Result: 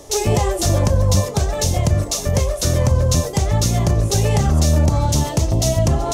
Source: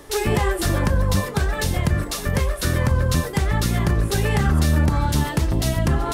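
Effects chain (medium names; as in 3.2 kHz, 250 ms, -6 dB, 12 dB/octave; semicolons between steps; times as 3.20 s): fifteen-band graphic EQ 100 Hz +7 dB, 630 Hz +9 dB, 1.6 kHz -9 dB, 6.3 kHz +12 dB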